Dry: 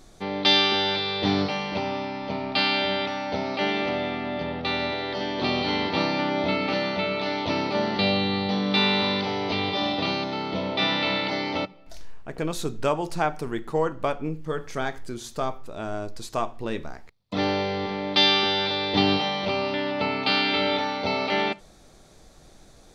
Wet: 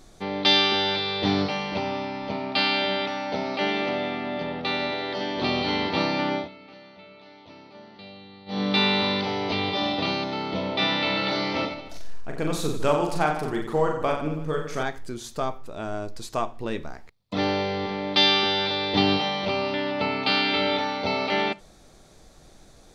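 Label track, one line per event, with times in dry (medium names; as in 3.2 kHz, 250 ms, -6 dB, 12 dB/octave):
2.320000	5.370000	high-pass 130 Hz
6.340000	8.610000	dip -21.5 dB, fades 0.15 s
11.130000	14.830000	reverse bouncing-ball echo first gap 40 ms, each gap 1.25×, echoes 5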